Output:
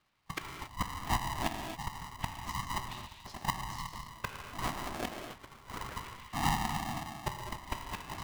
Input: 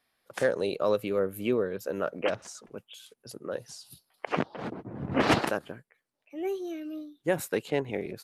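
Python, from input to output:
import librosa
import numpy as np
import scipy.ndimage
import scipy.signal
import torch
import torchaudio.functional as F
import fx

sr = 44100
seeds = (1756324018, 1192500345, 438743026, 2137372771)

p1 = fx.rattle_buzz(x, sr, strikes_db=-30.0, level_db=-19.0)
p2 = scipy.signal.sosfilt(scipy.signal.butter(4, 130.0, 'highpass', fs=sr, output='sos'), p1)
p3 = fx.dereverb_blind(p2, sr, rt60_s=1.2)
p4 = scipy.signal.sosfilt(scipy.signal.butter(2, 3900.0, 'lowpass', fs=sr, output='sos'), p3)
p5 = fx.peak_eq(p4, sr, hz=570.0, db=12.0, octaves=0.24)
p6 = p5 + fx.echo_stepped(p5, sr, ms=149, hz=280.0, octaves=0.7, feedback_pct=70, wet_db=-11.5, dry=0)
p7 = fx.gate_flip(p6, sr, shuts_db=-20.0, range_db=-30)
p8 = fx.whisperise(p7, sr, seeds[0])
p9 = fx.rev_gated(p8, sr, seeds[1], gate_ms=300, shape='flat', drr_db=2.5)
y = p9 * np.sign(np.sin(2.0 * np.pi * 490.0 * np.arange(len(p9)) / sr))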